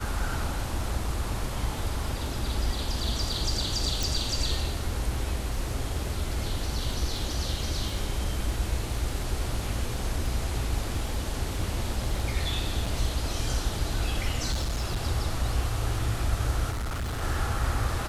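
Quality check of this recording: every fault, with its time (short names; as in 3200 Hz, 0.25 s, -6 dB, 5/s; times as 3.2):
crackle 12/s -35 dBFS
4.03 pop
12.86 gap 4.8 ms
14.51–15.04 clipped -24.5 dBFS
16.7–17.23 clipped -28 dBFS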